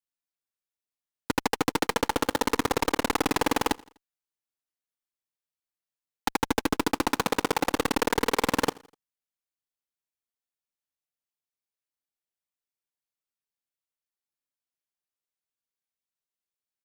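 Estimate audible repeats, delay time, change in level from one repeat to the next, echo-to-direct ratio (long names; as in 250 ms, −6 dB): 2, 83 ms, −7.0 dB, −22.5 dB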